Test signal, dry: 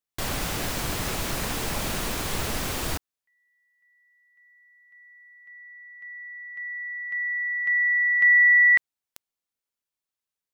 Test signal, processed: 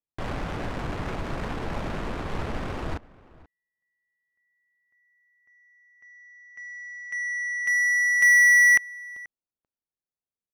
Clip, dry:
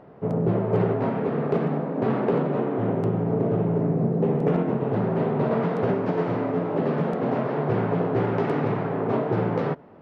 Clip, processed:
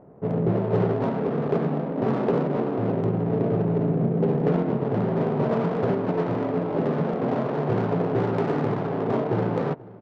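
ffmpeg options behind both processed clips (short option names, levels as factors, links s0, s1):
-filter_complex "[0:a]adynamicsmooth=sensitivity=2.5:basefreq=820,asplit=2[s0][s1];[s1]adelay=484,volume=0.0891,highshelf=f=4000:g=-10.9[s2];[s0][s2]amix=inputs=2:normalize=0"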